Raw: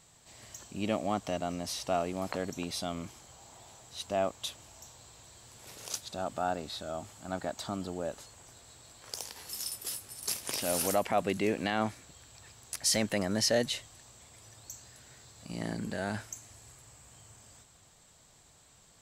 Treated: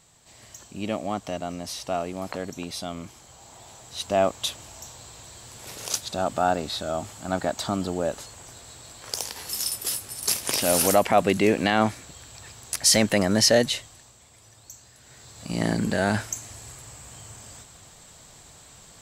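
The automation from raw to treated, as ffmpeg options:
ffmpeg -i in.wav -af "volume=20dB,afade=type=in:start_time=3.07:duration=1.3:silence=0.446684,afade=type=out:start_time=13.47:duration=0.7:silence=0.375837,afade=type=in:start_time=14.98:duration=0.64:silence=0.298538" out.wav

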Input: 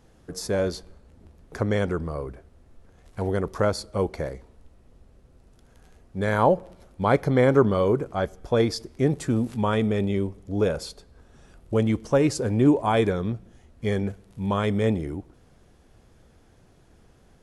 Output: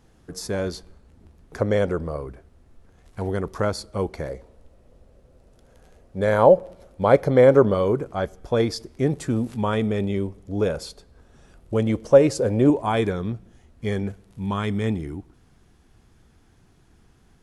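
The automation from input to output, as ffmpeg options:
ffmpeg -i in.wav -af "asetnsamples=nb_out_samples=441:pad=0,asendcmd='1.58 equalizer g 7;2.16 equalizer g -2;4.29 equalizer g 8.5;7.74 equalizer g 0.5;11.87 equalizer g 9.5;12.7 equalizer g -2.5;14.44 equalizer g -9.5',equalizer=frequency=550:width_type=o:width=0.58:gain=-3.5" out.wav

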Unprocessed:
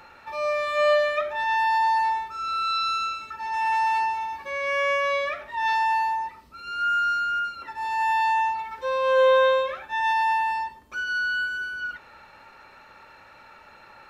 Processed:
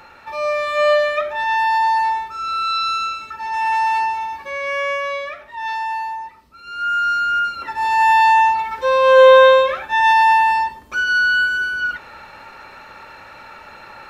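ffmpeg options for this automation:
ffmpeg -i in.wav -af "volume=16dB,afade=type=out:start_time=4.27:duration=1.01:silence=0.501187,afade=type=in:start_time=6.61:duration=1.12:silence=0.281838" out.wav

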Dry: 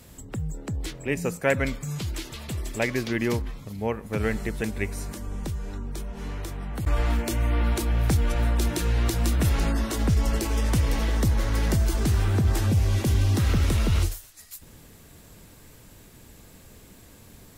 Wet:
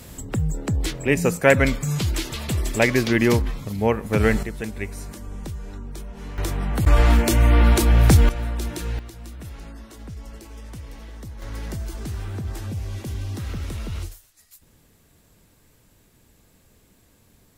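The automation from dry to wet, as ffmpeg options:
ffmpeg -i in.wav -af "asetnsamples=nb_out_samples=441:pad=0,asendcmd='4.43 volume volume -1.5dB;6.38 volume volume 8.5dB;8.29 volume volume -3.5dB;8.99 volume volume -15dB;11.42 volume volume -8dB',volume=7.5dB" out.wav

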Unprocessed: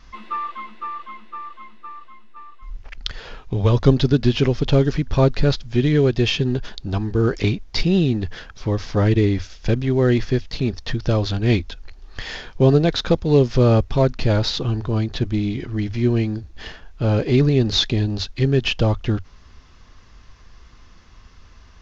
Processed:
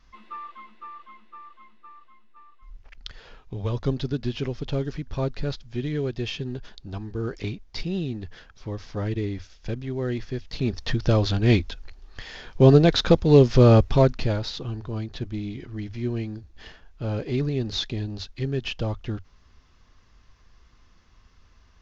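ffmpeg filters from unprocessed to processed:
ffmpeg -i in.wav -af "volume=9.5dB,afade=type=in:start_time=10.35:duration=0.49:silence=0.316228,afade=type=out:start_time=11.64:duration=0.69:silence=0.354813,afade=type=in:start_time=12.33:duration=0.35:silence=0.298538,afade=type=out:start_time=13.94:duration=0.45:silence=0.316228" out.wav

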